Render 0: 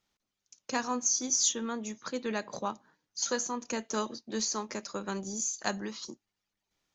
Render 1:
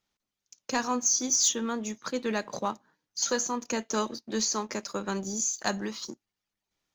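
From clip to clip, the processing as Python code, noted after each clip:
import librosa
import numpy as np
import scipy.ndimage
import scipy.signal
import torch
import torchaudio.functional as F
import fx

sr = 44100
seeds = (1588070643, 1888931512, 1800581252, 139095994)

y = fx.leveller(x, sr, passes=1)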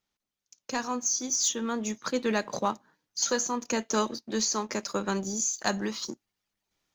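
y = fx.rider(x, sr, range_db=3, speed_s=0.5)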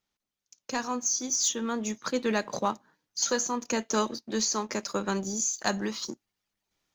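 y = x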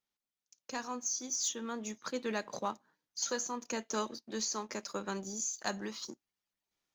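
y = fx.low_shelf(x, sr, hz=170.0, db=-5.5)
y = y * 10.0 ** (-7.5 / 20.0)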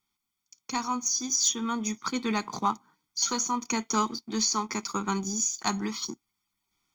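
y = x + 0.96 * np.pad(x, (int(0.9 * sr / 1000.0), 0))[:len(x)]
y = y * 10.0 ** (6.5 / 20.0)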